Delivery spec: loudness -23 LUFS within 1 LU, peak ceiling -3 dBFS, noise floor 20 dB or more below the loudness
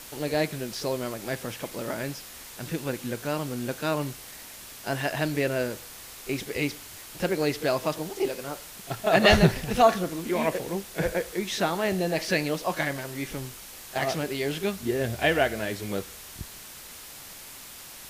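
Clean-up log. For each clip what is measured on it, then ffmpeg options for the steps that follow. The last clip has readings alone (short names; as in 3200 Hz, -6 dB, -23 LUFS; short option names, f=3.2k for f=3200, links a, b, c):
noise floor -44 dBFS; noise floor target -48 dBFS; loudness -27.5 LUFS; peak -5.5 dBFS; loudness target -23.0 LUFS
-> -af "afftdn=nr=6:nf=-44"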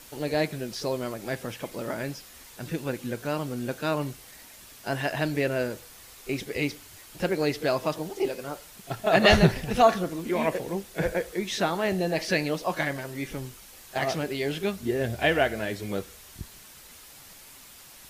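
noise floor -49 dBFS; loudness -27.5 LUFS; peak -5.5 dBFS; loudness target -23.0 LUFS
-> -af "volume=4.5dB,alimiter=limit=-3dB:level=0:latency=1"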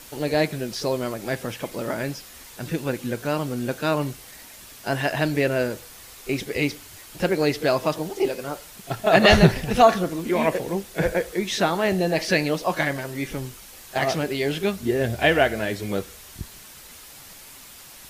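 loudness -23.5 LUFS; peak -3.0 dBFS; noise floor -45 dBFS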